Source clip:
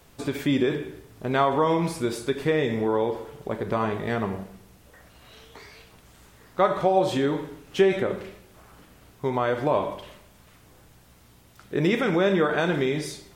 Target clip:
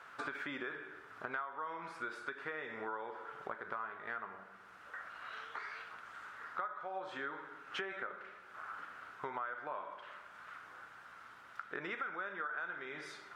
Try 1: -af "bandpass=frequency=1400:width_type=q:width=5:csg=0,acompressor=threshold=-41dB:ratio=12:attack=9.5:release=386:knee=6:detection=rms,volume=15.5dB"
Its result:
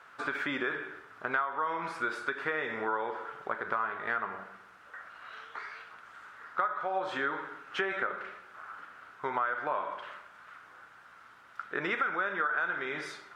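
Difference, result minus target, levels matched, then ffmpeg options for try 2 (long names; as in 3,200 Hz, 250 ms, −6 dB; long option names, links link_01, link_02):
downward compressor: peak gain reduction −10 dB
-af "bandpass=frequency=1400:width_type=q:width=5:csg=0,acompressor=threshold=-52dB:ratio=12:attack=9.5:release=386:knee=6:detection=rms,volume=15.5dB"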